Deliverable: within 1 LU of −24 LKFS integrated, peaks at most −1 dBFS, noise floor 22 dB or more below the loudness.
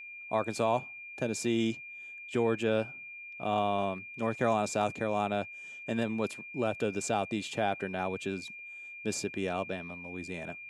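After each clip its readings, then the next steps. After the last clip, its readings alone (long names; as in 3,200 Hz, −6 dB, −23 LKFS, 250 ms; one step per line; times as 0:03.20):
interfering tone 2,400 Hz; level of the tone −43 dBFS; integrated loudness −33.0 LKFS; sample peak −15.0 dBFS; target loudness −24.0 LKFS
→ notch filter 2,400 Hz, Q 30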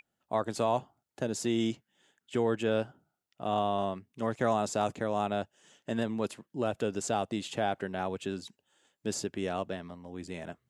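interfering tone none found; integrated loudness −33.0 LKFS; sample peak −15.0 dBFS; target loudness −24.0 LKFS
→ level +9 dB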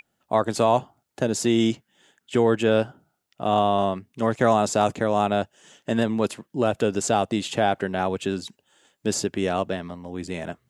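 integrated loudness −24.0 LKFS; sample peak −6.0 dBFS; background noise floor −76 dBFS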